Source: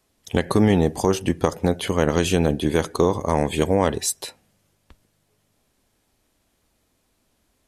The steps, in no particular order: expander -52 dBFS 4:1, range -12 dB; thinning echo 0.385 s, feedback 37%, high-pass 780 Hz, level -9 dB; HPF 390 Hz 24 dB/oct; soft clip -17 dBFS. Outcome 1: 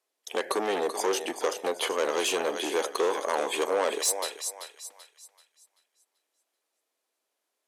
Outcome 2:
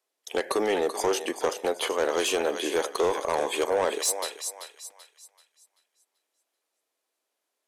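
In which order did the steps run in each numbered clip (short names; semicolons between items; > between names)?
expander > thinning echo > soft clip > HPF; HPF > expander > thinning echo > soft clip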